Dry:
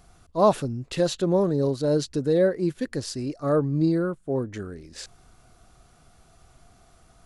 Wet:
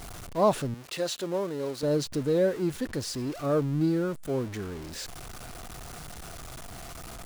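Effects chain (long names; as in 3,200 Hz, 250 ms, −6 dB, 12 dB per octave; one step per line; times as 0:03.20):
converter with a step at zero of −32 dBFS
0:00.74–0:01.83: high-pass filter 560 Hz 6 dB per octave
level −4.5 dB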